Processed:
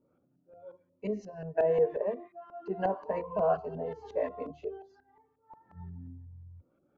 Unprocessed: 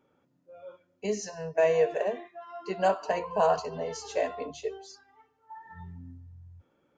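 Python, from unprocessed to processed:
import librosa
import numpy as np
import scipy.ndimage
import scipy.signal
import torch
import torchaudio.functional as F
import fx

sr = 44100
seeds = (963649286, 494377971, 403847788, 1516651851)

y = fx.filter_lfo_lowpass(x, sr, shape='saw_up', hz=5.6, low_hz=530.0, high_hz=2000.0, q=0.75)
y = fx.notch_cascade(y, sr, direction='rising', hz=0.91)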